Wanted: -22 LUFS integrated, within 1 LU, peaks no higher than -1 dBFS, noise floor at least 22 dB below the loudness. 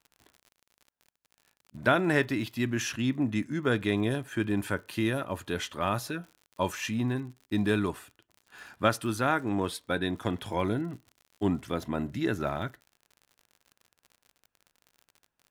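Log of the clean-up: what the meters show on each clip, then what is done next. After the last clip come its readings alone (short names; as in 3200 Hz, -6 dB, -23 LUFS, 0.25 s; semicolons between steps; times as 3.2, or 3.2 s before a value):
ticks 57/s; loudness -30.0 LUFS; peak -7.5 dBFS; loudness target -22.0 LUFS
-> de-click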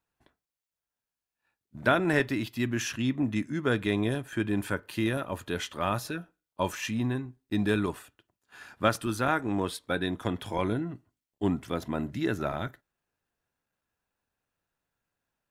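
ticks 0.064/s; loudness -30.0 LUFS; peak -7.5 dBFS; loudness target -22.0 LUFS
-> gain +8 dB; limiter -1 dBFS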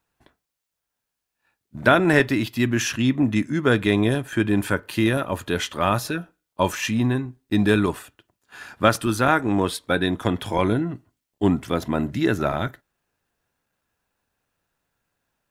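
loudness -22.5 LUFS; peak -1.0 dBFS; noise floor -83 dBFS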